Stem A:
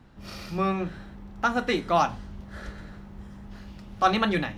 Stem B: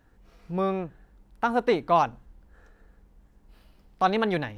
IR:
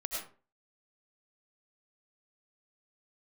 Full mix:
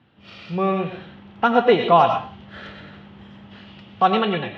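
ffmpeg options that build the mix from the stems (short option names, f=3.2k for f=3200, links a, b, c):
-filter_complex "[0:a]volume=-8dB,asplit=2[a][b];[b]volume=-7dB[c];[1:a]lowpass=1.3k,volume=-4.5dB,asplit=3[d][e][f];[e]volume=-4dB[g];[f]apad=whole_len=201853[h];[a][h]sidechaincompress=threshold=-33dB:ratio=8:attack=16:release=357[i];[2:a]atrim=start_sample=2205[j];[c][g]amix=inputs=2:normalize=0[k];[k][j]afir=irnorm=-1:irlink=0[l];[i][d][l]amix=inputs=3:normalize=0,highpass=f=92:w=0.5412,highpass=f=92:w=1.3066,dynaudnorm=f=270:g=5:m=8dB,lowpass=f=3.1k:t=q:w=3.8"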